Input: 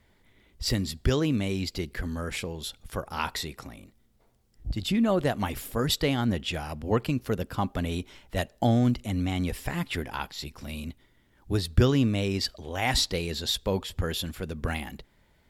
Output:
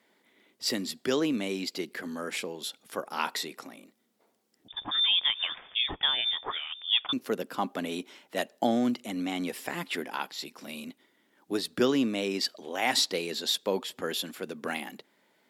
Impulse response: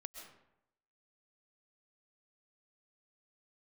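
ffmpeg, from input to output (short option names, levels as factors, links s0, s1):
-filter_complex "[0:a]highpass=f=230:w=0.5412,highpass=f=230:w=1.3066,asettb=1/sr,asplit=3[s0][s1][s2];[s0]atrim=end=4.684[s3];[s1]atrim=start=4.68:end=7.13,asetpts=PTS-STARTPTS,afade=t=in:d=0.004:c=qsin,afade=t=out:st=2.446:d=0.004:c=qsin,lowpass=f=3200:t=q:w=0.5098,lowpass=f=3200:t=q:w=0.6013,lowpass=f=3200:t=q:w=0.9,lowpass=f=3200:t=q:w=2.563,afreqshift=-3800[s4];[s2]atrim=start=7.126[s5];[s3][s4]acrossfade=d=0.004:c1=hsin:c2=qsin[s6];[s6][s5]acrossfade=d=0.004:c1=qsin:c2=hsin"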